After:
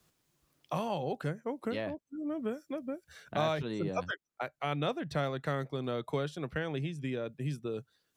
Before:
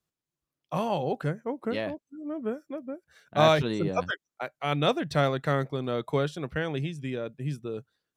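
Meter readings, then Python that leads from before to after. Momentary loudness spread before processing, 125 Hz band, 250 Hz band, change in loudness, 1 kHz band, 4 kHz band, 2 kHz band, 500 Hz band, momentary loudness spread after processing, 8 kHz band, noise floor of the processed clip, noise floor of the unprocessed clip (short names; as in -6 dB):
13 LU, -6.0 dB, -5.0 dB, -6.5 dB, -7.0 dB, -8.5 dB, -6.5 dB, -7.0 dB, 7 LU, -7.0 dB, -80 dBFS, under -85 dBFS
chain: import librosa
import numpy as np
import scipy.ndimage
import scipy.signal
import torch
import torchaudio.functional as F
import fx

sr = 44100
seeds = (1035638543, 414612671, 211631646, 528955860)

y = fx.band_squash(x, sr, depth_pct=70)
y = y * 10.0 ** (-6.0 / 20.0)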